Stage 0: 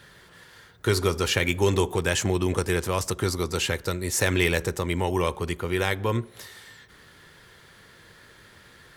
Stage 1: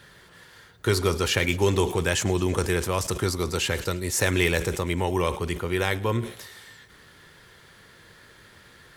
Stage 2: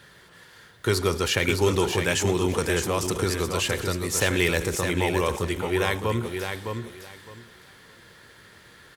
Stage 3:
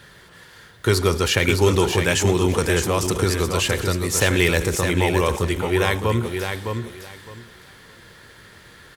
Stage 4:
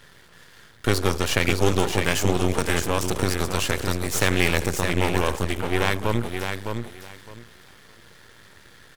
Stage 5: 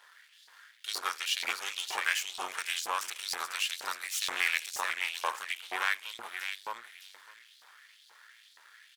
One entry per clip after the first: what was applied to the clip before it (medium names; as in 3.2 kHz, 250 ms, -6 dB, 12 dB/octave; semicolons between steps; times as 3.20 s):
feedback echo behind a high-pass 107 ms, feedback 71%, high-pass 3.1 kHz, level -19 dB; decay stretcher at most 130 dB/s
bass shelf 62 Hz -6 dB; on a send: feedback delay 611 ms, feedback 20%, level -6 dB
bass shelf 78 Hz +6.5 dB; trim +4 dB
half-wave rectifier
LFO high-pass saw up 2.1 Hz 810–4500 Hz; trim -8.5 dB